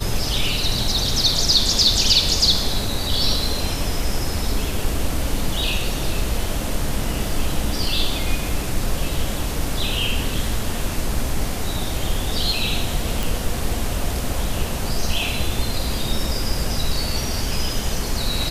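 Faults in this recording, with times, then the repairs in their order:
0:13.23: click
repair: click removal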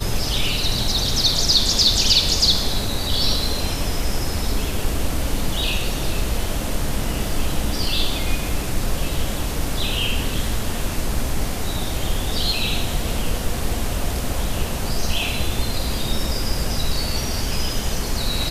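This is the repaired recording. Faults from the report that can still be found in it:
none of them is left

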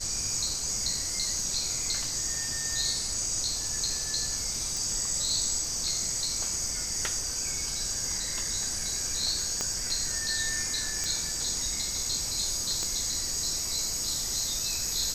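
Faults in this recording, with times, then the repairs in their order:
0:04.77: click
0:09.61: click −15 dBFS
0:11.04: click −17 dBFS
0:12.83: click −19 dBFS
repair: click removal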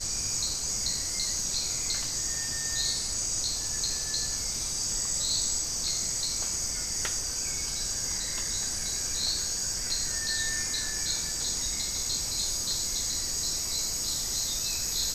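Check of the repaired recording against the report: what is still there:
0:09.61: click
0:12.83: click

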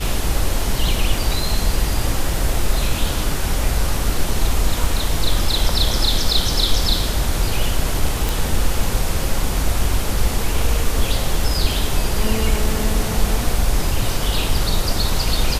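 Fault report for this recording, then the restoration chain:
0:08.29: click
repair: click removal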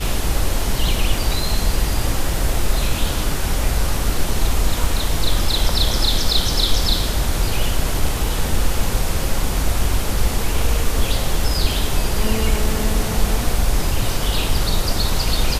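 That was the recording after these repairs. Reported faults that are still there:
none of them is left

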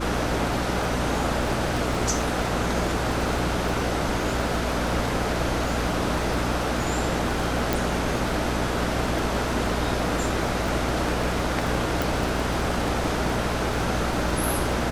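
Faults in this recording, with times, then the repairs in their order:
surface crackle 34 per second −29 dBFS
mains hum 60 Hz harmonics 5 −30 dBFS
0:07.73: click
0:12.02: click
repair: click removal
hum removal 60 Hz, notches 5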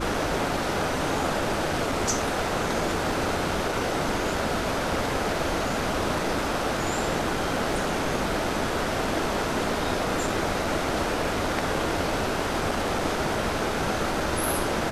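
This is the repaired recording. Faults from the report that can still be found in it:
0:07.73: click
0:12.02: click

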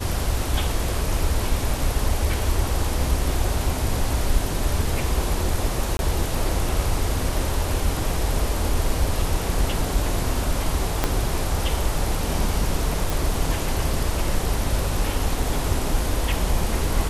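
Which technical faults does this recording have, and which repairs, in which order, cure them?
0:05.97–0:05.99: drop-out 21 ms
0:11.04: click −5 dBFS
0:13.10: click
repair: click removal
repair the gap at 0:05.97, 21 ms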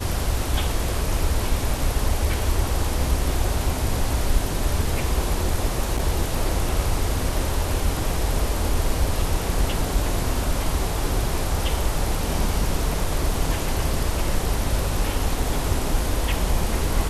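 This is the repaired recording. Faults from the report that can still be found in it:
0:11.04: click

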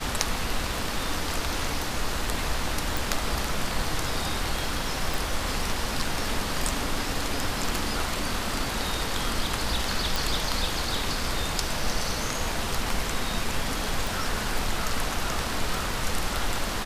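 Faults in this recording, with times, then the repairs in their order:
0:02.97: click
0:05.14: click
0:10.16: click
0:14.07: click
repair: click removal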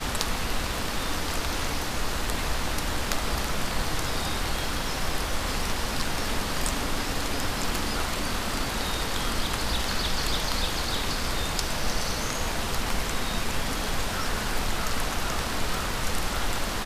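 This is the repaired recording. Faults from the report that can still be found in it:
none of them is left

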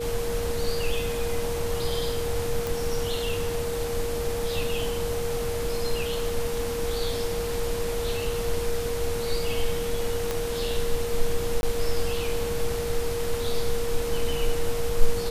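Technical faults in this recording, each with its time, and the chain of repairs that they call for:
whistle 470 Hz −28 dBFS
0:02.67: click
0:10.31: click −12 dBFS
0:11.61–0:11.63: drop-out 21 ms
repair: click removal
notch filter 470 Hz, Q 30
repair the gap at 0:11.61, 21 ms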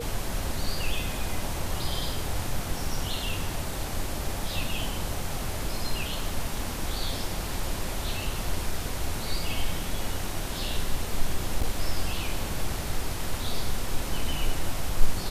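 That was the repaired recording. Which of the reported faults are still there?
0:10.31: click

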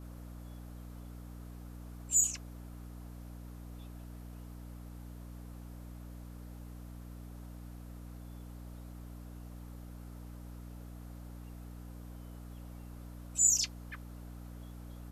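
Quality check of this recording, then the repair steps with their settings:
mains hum 60 Hz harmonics 5 −47 dBFS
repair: hum removal 60 Hz, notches 5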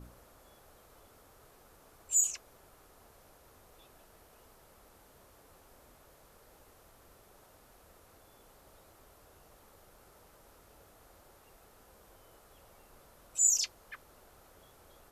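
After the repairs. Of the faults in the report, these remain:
none of them is left

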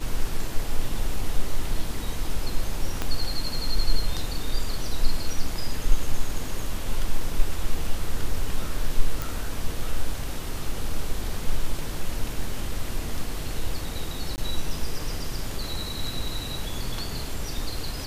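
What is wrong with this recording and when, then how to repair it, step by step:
0:03.02: click −12 dBFS
0:09.22: click
0:14.36–0:14.38: drop-out 19 ms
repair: click removal
repair the gap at 0:14.36, 19 ms

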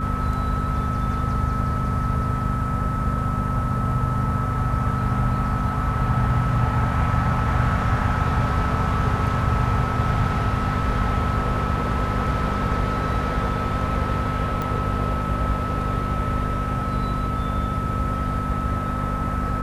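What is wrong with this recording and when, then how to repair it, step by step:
mains hum 50 Hz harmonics 5 −27 dBFS
whistle 1,300 Hz −28 dBFS
0:14.62: click −14 dBFS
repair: click removal
notch filter 1,300 Hz, Q 30
hum removal 50 Hz, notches 5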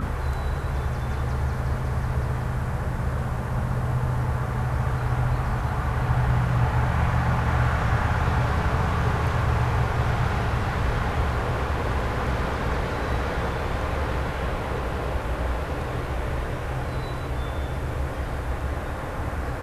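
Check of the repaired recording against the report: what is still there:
none of them is left

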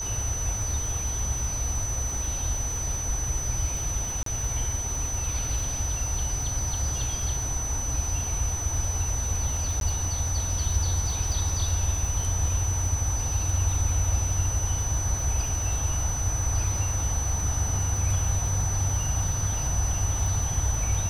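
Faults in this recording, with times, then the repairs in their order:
surface crackle 23 per second −31 dBFS
whistle 6,000 Hz −30 dBFS
0:04.23–0:04.26: drop-out 33 ms
0:09.80–0:09.81: drop-out 12 ms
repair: click removal
notch filter 6,000 Hz, Q 30
repair the gap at 0:04.23, 33 ms
repair the gap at 0:09.80, 12 ms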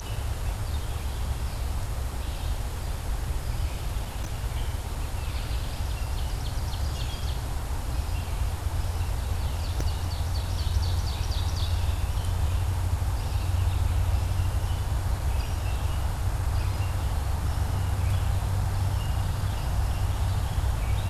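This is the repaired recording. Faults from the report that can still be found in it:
none of them is left

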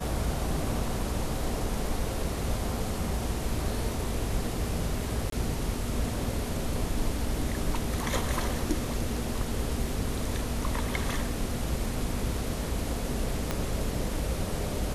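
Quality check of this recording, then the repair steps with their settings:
0:05.30–0:05.32: drop-out 23 ms
0:13.51: click −13 dBFS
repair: click removal
repair the gap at 0:05.30, 23 ms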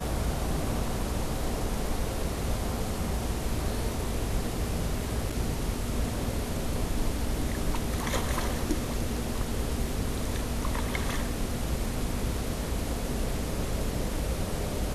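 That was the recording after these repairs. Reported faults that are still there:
0:13.51: click

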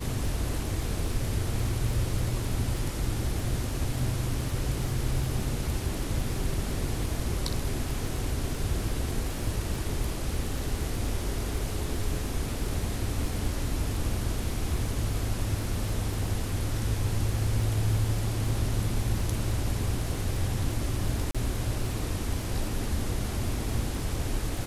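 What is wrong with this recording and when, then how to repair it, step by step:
surface crackle 26 per second −34 dBFS
0:21.31–0:21.35: drop-out 36 ms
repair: click removal
repair the gap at 0:21.31, 36 ms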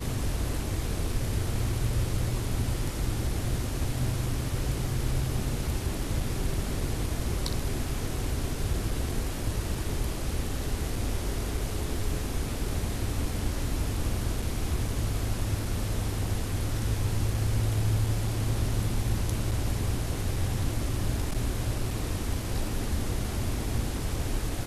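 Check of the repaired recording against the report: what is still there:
none of them is left

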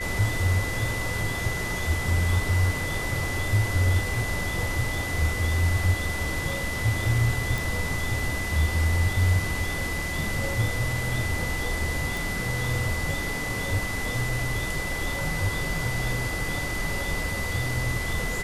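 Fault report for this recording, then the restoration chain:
whistle 2,000 Hz −31 dBFS
0:07.58: click
0:12.17: click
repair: click removal
notch filter 2,000 Hz, Q 30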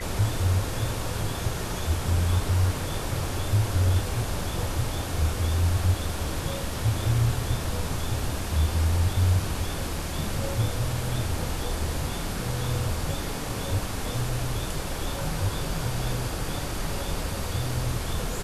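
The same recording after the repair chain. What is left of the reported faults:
none of them is left

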